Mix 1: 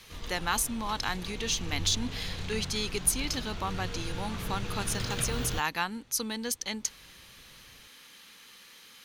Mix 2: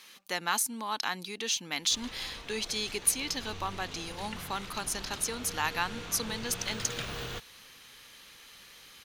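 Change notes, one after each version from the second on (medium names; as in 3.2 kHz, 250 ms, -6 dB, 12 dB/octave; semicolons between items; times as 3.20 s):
background: entry +1.80 s; master: add bass shelf 190 Hz -11.5 dB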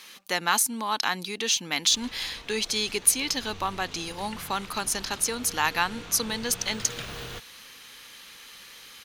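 speech +6.0 dB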